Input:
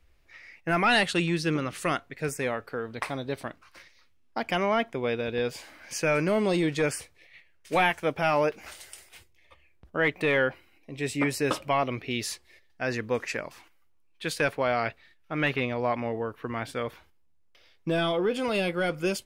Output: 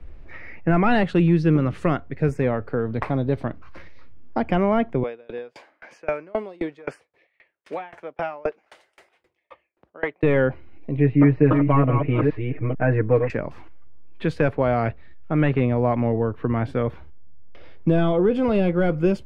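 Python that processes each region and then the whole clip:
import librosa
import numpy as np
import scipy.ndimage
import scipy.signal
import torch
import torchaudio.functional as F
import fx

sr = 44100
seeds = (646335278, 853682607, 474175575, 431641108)

y = fx.chain(x, sr, fx.highpass(hz=520.0, slope=12),
    fx.tremolo_decay(direction='decaying', hz=3.8, depth_db=32), at=(5.03, 10.23))
y = fx.chain(y, sr, fx.reverse_delay(ms=443, wet_db=-6.0),
    fx.lowpass(hz=2400.0, slope=24),
    fx.comb(ms=6.5, depth=0.96), at=(10.97, 13.3))
y = fx.lowpass(y, sr, hz=2600.0, slope=6)
y = fx.tilt_eq(y, sr, slope=-3.5)
y = fx.band_squash(y, sr, depth_pct=40)
y = y * librosa.db_to_amplitude(3.0)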